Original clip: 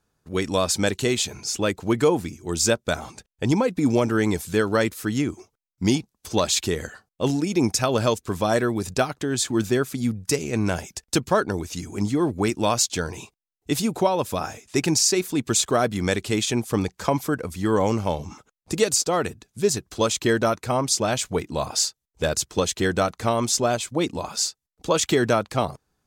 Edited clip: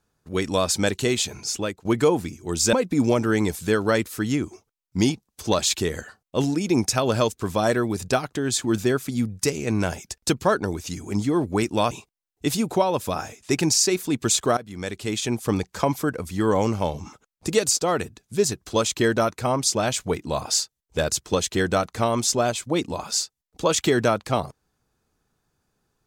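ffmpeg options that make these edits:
-filter_complex "[0:a]asplit=5[a][b][c][d][e];[a]atrim=end=1.85,asetpts=PTS-STARTPTS,afade=t=out:st=1.51:d=0.34:silence=0.1[f];[b]atrim=start=1.85:end=2.732,asetpts=PTS-STARTPTS,afade=t=in:d=0.004:c=hsin:silence=0.1[g];[c]atrim=start=3.588:end=12.772[h];[d]atrim=start=13.158:end=15.82,asetpts=PTS-STARTPTS,afade=t=out:st=2.658:d=0.004:c=hsin:silence=0.133352[i];[e]atrim=start=15.82,asetpts=PTS-STARTPTS,afade=t=in:d=0.9:silence=0.133352[j];[f][g]concat=n=2:v=0:a=1[k];[k][h]acrossfade=d=0.004:c1=hsin:c2=hsin[l];[i][j]concat=n=2:v=0:a=1[m];[l][m]acrossfade=d=0.004:c1=hsin:c2=hsin"

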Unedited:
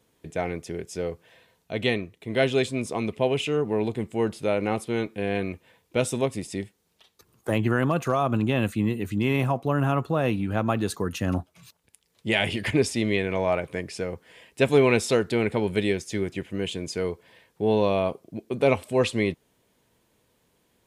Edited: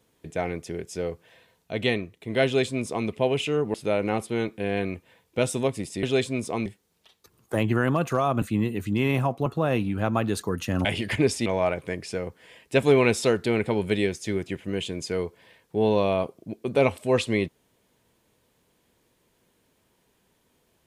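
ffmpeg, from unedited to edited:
-filter_complex "[0:a]asplit=8[a][b][c][d][e][f][g][h];[a]atrim=end=3.742[i];[b]atrim=start=4.318:end=6.612[j];[c]atrim=start=2.448:end=3.082[k];[d]atrim=start=6.608:end=8.372[l];[e]atrim=start=8.668:end=9.712[m];[f]atrim=start=9.988:end=11.382[n];[g]atrim=start=12.398:end=13.012[o];[h]atrim=start=13.318[p];[i][j]acrossfade=d=0.004:c1=hsin:c2=hsin[q];[q][k]acrossfade=d=0.004:c1=hsin:c2=hsin[r];[r][l]acrossfade=d=0.004:c1=hsin:c2=hsin[s];[s][m]acrossfade=d=0.004:c1=hsin:c2=hsin[t];[t][n]acrossfade=d=0.004:c1=hsin:c2=hsin[u];[u][o]acrossfade=d=0.004:c1=hsin:c2=hsin[v];[v][p]acrossfade=d=0.004:c1=hsin:c2=hsin"

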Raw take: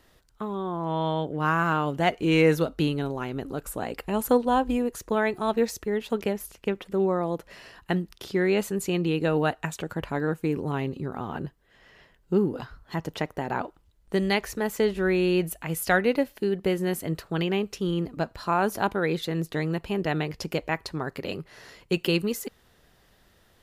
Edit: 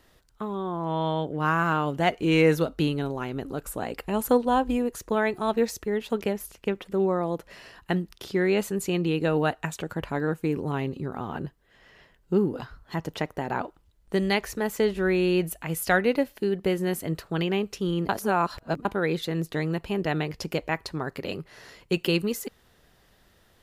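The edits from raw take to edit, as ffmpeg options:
-filter_complex "[0:a]asplit=3[a][b][c];[a]atrim=end=18.092[d];[b]atrim=start=18.088:end=18.852,asetpts=PTS-STARTPTS,areverse[e];[c]atrim=start=18.848[f];[d][e]acrossfade=d=0.004:c1=hsin:c2=hsin[g];[g][f]acrossfade=d=0.004:c1=hsin:c2=hsin"

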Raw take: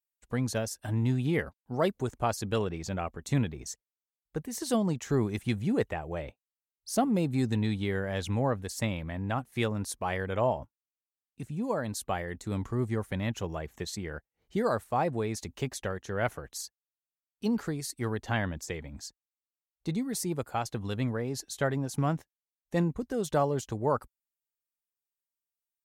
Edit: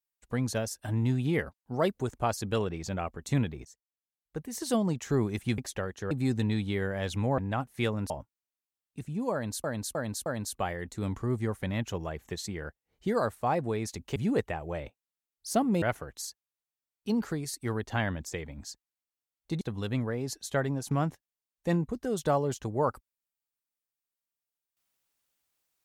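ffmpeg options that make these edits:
-filter_complex "[0:a]asplit=12[a][b][c][d][e][f][g][h][i][j][k][l];[a]atrim=end=3.65,asetpts=PTS-STARTPTS,afade=t=out:st=3.646:d=0.004:c=hsin:silence=0.133352[m];[b]atrim=start=3.65:end=5.582,asetpts=PTS-STARTPTS,afade=t=in:d=1.02:silence=0.133352[n];[c]atrim=start=15.648:end=16.182[o];[d]atrim=start=7.238:end=8.512[p];[e]atrim=start=9.158:end=9.882[q];[f]atrim=start=10.518:end=12.062[r];[g]atrim=start=11.748:end=12.062[s];[h]atrim=start=11.748:end=12.062[t];[i]atrim=start=11.748:end=15.652[u];[j]atrim=start=5.578:end=7.242[v];[k]atrim=start=16.178:end=19.972[w];[l]atrim=start=20.678[x];[m][n]concat=n=2:v=0:a=1[y];[y][o]acrossfade=d=0.004:c1=hsin:c2=hsin[z];[z][p]acrossfade=d=0.004:c1=hsin:c2=hsin[aa];[aa][q]acrossfade=d=0.004:c1=hsin:c2=hsin[ab];[ab][r]acrossfade=d=0.004:c1=hsin:c2=hsin[ac];[ac][s]acrossfade=d=0.004:c1=hsin:c2=hsin[ad];[ad][t]acrossfade=d=0.004:c1=hsin:c2=hsin[ae];[ae][u]acrossfade=d=0.004:c1=hsin:c2=hsin[af];[af][v]acrossfade=d=0.004:c1=hsin:c2=hsin[ag];[ag][w]acrossfade=d=0.004:c1=hsin:c2=hsin[ah];[ah][x]acrossfade=d=0.004:c1=hsin:c2=hsin"

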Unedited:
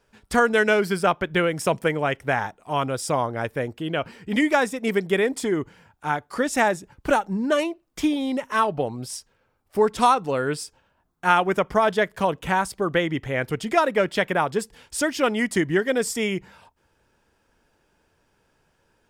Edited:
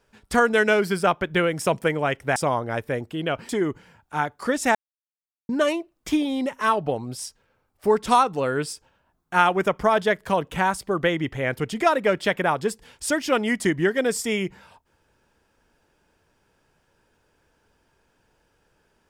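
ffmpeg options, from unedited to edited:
-filter_complex "[0:a]asplit=5[a][b][c][d][e];[a]atrim=end=2.362[f];[b]atrim=start=3.028:end=4.162[g];[c]atrim=start=5.398:end=6.66,asetpts=PTS-STARTPTS,afade=t=out:st=1.258:d=0.004:c=hsin[h];[d]atrim=start=6.66:end=7.4,asetpts=PTS-STARTPTS,volume=0[i];[e]atrim=start=7.4,asetpts=PTS-STARTPTS,afade=t=in:d=0.004:c=hsin[j];[f][g]acrossfade=d=0.004:c1=hsin:c2=hsin[k];[h][i][j]concat=n=3:v=0:a=1[l];[k][l]acrossfade=d=0.004:c1=hsin:c2=hsin"

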